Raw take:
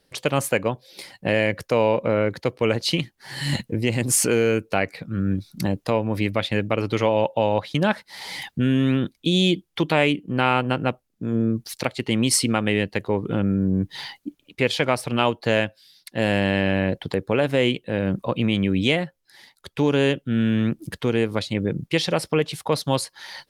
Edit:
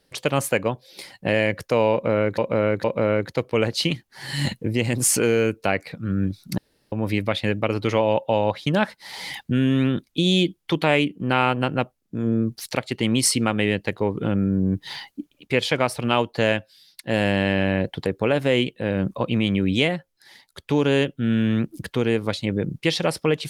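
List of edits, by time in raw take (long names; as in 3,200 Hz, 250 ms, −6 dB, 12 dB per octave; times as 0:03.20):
0:01.92–0:02.38: repeat, 3 plays
0:05.66–0:06.00: fill with room tone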